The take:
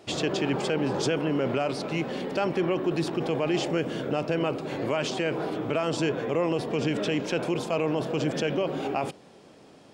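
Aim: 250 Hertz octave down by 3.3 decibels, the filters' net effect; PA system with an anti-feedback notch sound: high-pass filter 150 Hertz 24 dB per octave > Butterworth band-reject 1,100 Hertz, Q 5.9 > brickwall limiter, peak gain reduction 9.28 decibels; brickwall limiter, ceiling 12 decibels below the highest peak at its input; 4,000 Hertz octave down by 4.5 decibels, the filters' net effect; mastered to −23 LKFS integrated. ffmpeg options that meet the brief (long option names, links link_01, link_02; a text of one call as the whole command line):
ffmpeg -i in.wav -af "equalizer=frequency=250:width_type=o:gain=-4.5,equalizer=frequency=4000:width_type=o:gain=-6.5,alimiter=level_in=4.5dB:limit=-24dB:level=0:latency=1,volume=-4.5dB,highpass=frequency=150:width=0.5412,highpass=frequency=150:width=1.3066,asuperstop=centerf=1100:order=8:qfactor=5.9,volume=20dB,alimiter=limit=-15dB:level=0:latency=1" out.wav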